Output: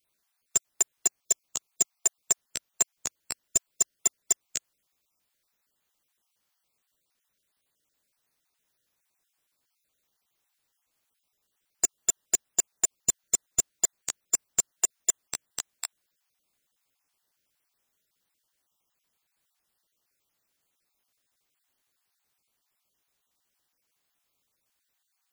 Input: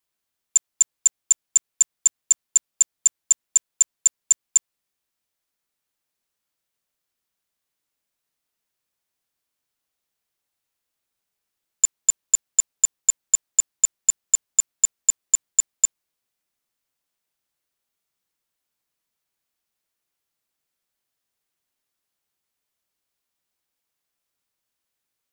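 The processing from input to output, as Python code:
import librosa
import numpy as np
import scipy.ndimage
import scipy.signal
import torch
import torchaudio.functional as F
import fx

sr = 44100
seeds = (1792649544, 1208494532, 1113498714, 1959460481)

y = fx.spec_dropout(x, sr, seeds[0], share_pct=28)
y = fx.slew_limit(y, sr, full_power_hz=540.0)
y = F.gain(torch.from_numpy(y), 5.0).numpy()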